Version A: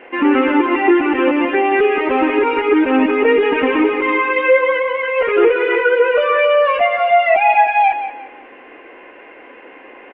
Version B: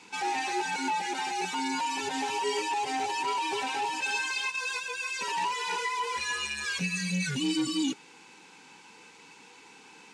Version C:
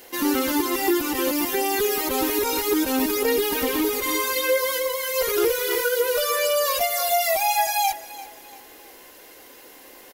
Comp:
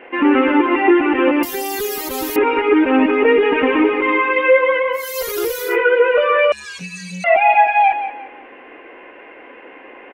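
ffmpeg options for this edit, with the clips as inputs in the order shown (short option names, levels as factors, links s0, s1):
-filter_complex "[2:a]asplit=2[s0][s1];[0:a]asplit=4[s2][s3][s4][s5];[s2]atrim=end=1.432[s6];[s0]atrim=start=1.428:end=2.362[s7];[s3]atrim=start=2.358:end=5.08[s8];[s1]atrim=start=4.92:end=5.77[s9];[s4]atrim=start=5.61:end=6.522[s10];[1:a]atrim=start=6.518:end=7.242[s11];[s5]atrim=start=7.238[s12];[s6][s7]acrossfade=d=0.004:c1=hsin:c2=hsin[s13];[s13][s8]acrossfade=d=0.004:c1=hsin:c2=hsin[s14];[s14][s9]acrossfade=d=0.16:c1=tri:c2=tri[s15];[s15][s10]acrossfade=d=0.16:c1=tri:c2=tri[s16];[s16][s11]acrossfade=d=0.004:c1=hsin:c2=hsin[s17];[s17][s12]acrossfade=d=0.004:c1=hsin:c2=hsin"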